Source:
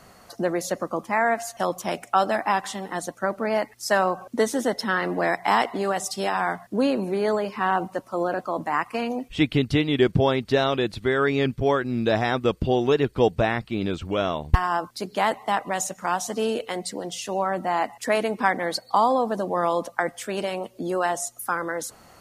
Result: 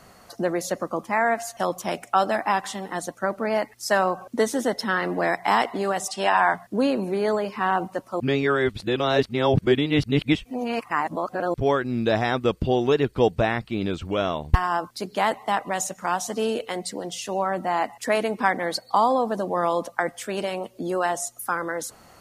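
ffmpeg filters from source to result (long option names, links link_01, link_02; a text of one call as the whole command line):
ffmpeg -i in.wav -filter_complex "[0:a]asettb=1/sr,asplit=3[link_01][link_02][link_03];[link_01]atrim=end=6.084[link_04];[link_02]atrim=start=6.08:end=6.54,asetpts=PTS-STARTPTS,afade=type=in:duration=0.004:curve=qsin,afade=type=out:start_time=0.456:duration=0.004:curve=qsin,highpass=190,equalizer=frequency=460:width_type=q:width=4:gain=-4,equalizer=frequency=650:width_type=q:width=4:gain=6,equalizer=frequency=970:width_type=q:width=4:gain=8,equalizer=frequency=1700:width_type=q:width=4:gain=7,equalizer=frequency=2800:width_type=q:width=4:gain=7,equalizer=frequency=5000:width_type=q:width=4:gain=-3,lowpass=frequency=9600:width=0.5412,lowpass=frequency=9600:width=1.3066[link_05];[link_03]atrim=start=6.536[link_06];[link_04][link_05]acrossfade=duration=0.004:curve1=hsin:curve2=qsin[link_07];[link_07][link_06]acrossfade=duration=0.004:curve1=qsin:curve2=hsin,asplit=3[link_08][link_09][link_10];[link_08]atrim=end=8.202[link_11];[link_09]atrim=start=8.198:end=11.542,asetpts=PTS-STARTPTS,areverse[link_12];[link_10]atrim=start=11.538[link_13];[link_11][link_12]acrossfade=duration=0.004:curve1=hsin:curve2=hsin[link_14];[link_14][link_13]acrossfade=duration=0.004:curve1=hsin:curve2=hsin" out.wav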